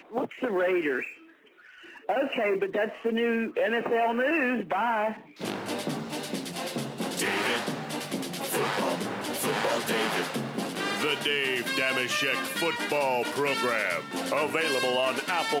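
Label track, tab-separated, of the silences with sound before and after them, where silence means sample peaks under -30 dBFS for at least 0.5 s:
1.070000	2.090000	silence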